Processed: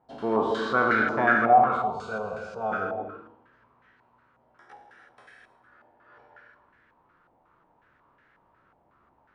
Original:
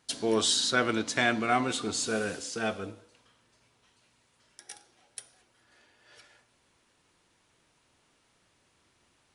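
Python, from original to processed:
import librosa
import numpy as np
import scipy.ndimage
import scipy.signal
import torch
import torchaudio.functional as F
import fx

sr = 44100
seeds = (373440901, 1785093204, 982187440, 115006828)

y = fx.spec_trails(x, sr, decay_s=0.68)
y = fx.fixed_phaser(y, sr, hz=730.0, stages=4, at=(1.53, 2.72))
y = fx.rev_gated(y, sr, seeds[0], gate_ms=350, shape='flat', drr_db=4.0)
y = fx.filter_held_lowpass(y, sr, hz=5.5, low_hz=790.0, high_hz=1700.0)
y = y * librosa.db_to_amplitude(-1.0)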